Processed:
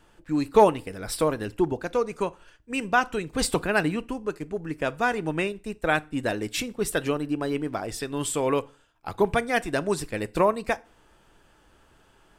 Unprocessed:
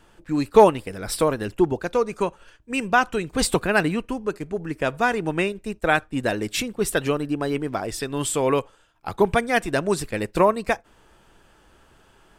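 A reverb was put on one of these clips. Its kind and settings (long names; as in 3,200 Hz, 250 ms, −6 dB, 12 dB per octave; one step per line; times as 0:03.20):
feedback delay network reverb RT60 0.37 s, low-frequency decay 1.2×, high-frequency decay 0.9×, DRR 17 dB
level −3.5 dB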